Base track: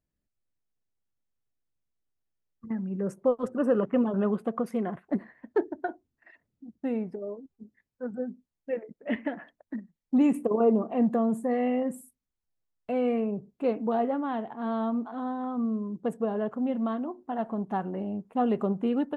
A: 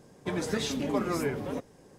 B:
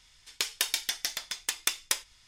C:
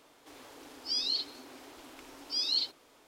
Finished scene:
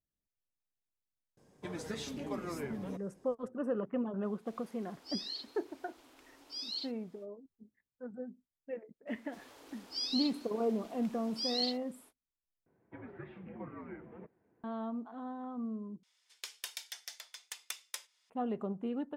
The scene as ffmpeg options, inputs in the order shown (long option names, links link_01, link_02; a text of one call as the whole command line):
ffmpeg -i bed.wav -i cue0.wav -i cue1.wav -i cue2.wav -filter_complex "[1:a]asplit=2[link_01][link_02];[3:a]asplit=2[link_03][link_04];[0:a]volume=-10dB[link_05];[link_02]highpass=frequency=200:width_type=q:width=0.5412,highpass=frequency=200:width_type=q:width=1.307,lowpass=frequency=2400:width_type=q:width=0.5176,lowpass=frequency=2400:width_type=q:width=0.7071,lowpass=frequency=2400:width_type=q:width=1.932,afreqshift=-75[link_06];[2:a]highpass=frequency=420:width=0.5412,highpass=frequency=420:width=1.3066[link_07];[link_05]asplit=3[link_08][link_09][link_10];[link_08]atrim=end=12.664[link_11];[link_06]atrim=end=1.98,asetpts=PTS-STARTPTS,volume=-16dB[link_12];[link_09]atrim=start=14.636:end=16.034[link_13];[link_07]atrim=end=2.27,asetpts=PTS-STARTPTS,volume=-14dB[link_14];[link_10]atrim=start=18.296[link_15];[link_01]atrim=end=1.98,asetpts=PTS-STARTPTS,volume=-10dB,afade=type=in:duration=0.004:curve=hsin,afade=type=out:start_time=1.976:duration=0.004:curve=hsin,adelay=1370[link_16];[link_03]atrim=end=3.07,asetpts=PTS-STARTPTS,volume=-10dB,afade=type=in:duration=0.05,afade=type=out:start_time=3.02:duration=0.05,adelay=4200[link_17];[link_04]atrim=end=3.07,asetpts=PTS-STARTPTS,volume=-5dB,afade=type=in:duration=0.05,afade=type=out:start_time=3.02:duration=0.05,adelay=399546S[link_18];[link_11][link_12]acrossfade=duration=0.004:curve1=hsin:curve2=hsin[link_19];[link_19][link_13]acrossfade=duration=0.004:curve1=hsin:curve2=hsin[link_20];[link_20][link_14]acrossfade=duration=0.004:curve1=hsin:curve2=hsin[link_21];[link_21][link_15]acrossfade=duration=0.004:curve1=hsin:curve2=hsin[link_22];[link_22][link_16][link_17][link_18]amix=inputs=4:normalize=0" out.wav